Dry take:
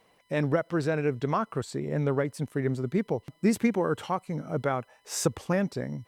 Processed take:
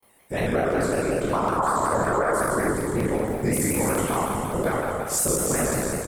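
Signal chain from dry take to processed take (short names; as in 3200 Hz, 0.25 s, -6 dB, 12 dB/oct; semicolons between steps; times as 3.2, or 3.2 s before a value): spectral trails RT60 2.35 s; 1.59–2.74 band shelf 970 Hz +12.5 dB; frequency-shifting echo 0.338 s, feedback 59%, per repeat -79 Hz, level -15 dB; whisperiser; gate with hold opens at -53 dBFS; resonant high shelf 7200 Hz +11.5 dB, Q 1.5; limiter -13.5 dBFS, peak gain reduction 9.5 dB; crackling interface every 0.19 s, samples 128, zero, from 0.72; shaped vibrato square 5.4 Hz, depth 100 cents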